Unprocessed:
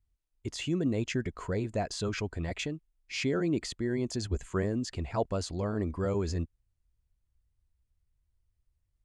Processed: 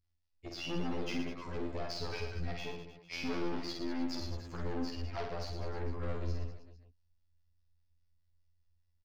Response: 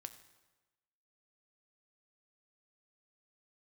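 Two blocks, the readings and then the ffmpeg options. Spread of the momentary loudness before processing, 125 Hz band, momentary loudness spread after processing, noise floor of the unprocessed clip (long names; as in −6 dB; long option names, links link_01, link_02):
7 LU, −7.5 dB, 6 LU, −79 dBFS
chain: -filter_complex "[0:a]afftfilt=real='hypot(re,im)*cos(PI*b)':imag='0':win_size=2048:overlap=0.75,aeval=exprs='(tanh(89.1*val(0)+0.65)-tanh(0.65))/89.1':channel_layout=same,acrossover=split=420[link_01][link_02];[link_01]aeval=exprs='val(0)*(1-0.5/2+0.5/2*cos(2*PI*4.9*n/s))':channel_layout=same[link_03];[link_02]aeval=exprs='val(0)*(1-0.5/2-0.5/2*cos(2*PI*4.9*n/s))':channel_layout=same[link_04];[link_03][link_04]amix=inputs=2:normalize=0,highshelf=frequency=6400:width_type=q:width=3:gain=-7,asplit=2[link_05][link_06];[link_06]aecho=0:1:50|115|199.5|309.4|452.2:0.631|0.398|0.251|0.158|0.1[link_07];[link_05][link_07]amix=inputs=2:normalize=0,volume=5.5dB"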